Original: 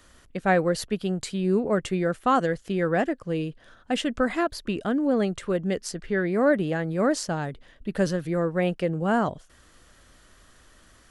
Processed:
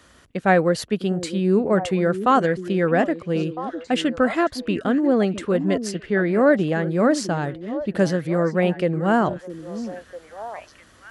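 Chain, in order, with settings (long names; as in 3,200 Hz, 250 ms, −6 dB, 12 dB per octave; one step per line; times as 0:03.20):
high-pass filter 70 Hz
high-shelf EQ 6,900 Hz −6 dB
echo through a band-pass that steps 653 ms, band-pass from 280 Hz, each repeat 1.4 octaves, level −8 dB
level +4.5 dB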